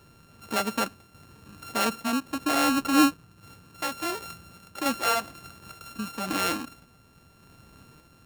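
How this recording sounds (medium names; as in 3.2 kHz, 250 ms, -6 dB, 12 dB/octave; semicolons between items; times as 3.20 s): a buzz of ramps at a fixed pitch in blocks of 32 samples; random-step tremolo 3.5 Hz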